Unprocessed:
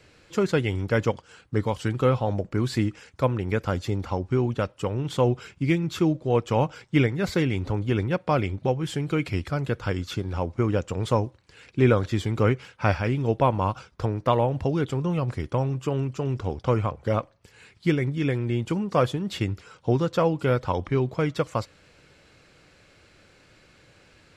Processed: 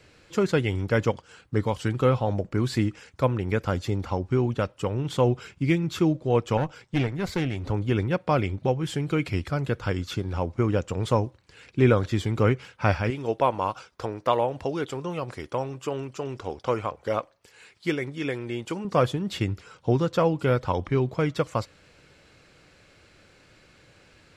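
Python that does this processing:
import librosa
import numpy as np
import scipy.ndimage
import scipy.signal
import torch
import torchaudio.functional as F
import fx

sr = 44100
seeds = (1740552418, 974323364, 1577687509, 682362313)

y = fx.tube_stage(x, sr, drive_db=18.0, bias=0.6, at=(6.57, 7.64))
y = fx.bass_treble(y, sr, bass_db=-12, treble_db=2, at=(13.1, 18.85))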